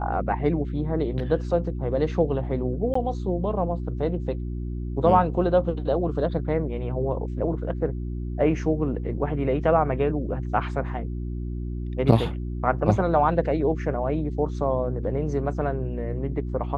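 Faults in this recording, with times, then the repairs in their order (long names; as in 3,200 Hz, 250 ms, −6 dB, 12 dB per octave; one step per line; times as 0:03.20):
mains hum 60 Hz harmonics 6 −30 dBFS
0:02.94–0:02.95: drop-out 14 ms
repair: hum removal 60 Hz, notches 6
repair the gap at 0:02.94, 14 ms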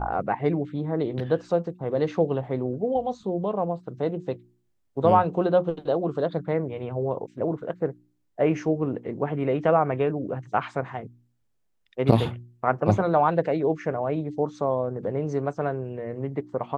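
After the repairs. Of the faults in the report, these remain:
none of them is left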